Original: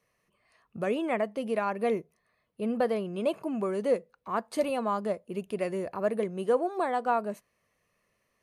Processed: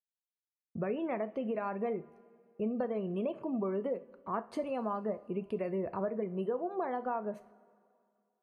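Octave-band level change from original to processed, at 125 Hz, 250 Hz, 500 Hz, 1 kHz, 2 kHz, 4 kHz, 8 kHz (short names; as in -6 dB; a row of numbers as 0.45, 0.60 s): -1.5 dB, -3.5 dB, -6.0 dB, -7.0 dB, -10.0 dB, under -10 dB, under -15 dB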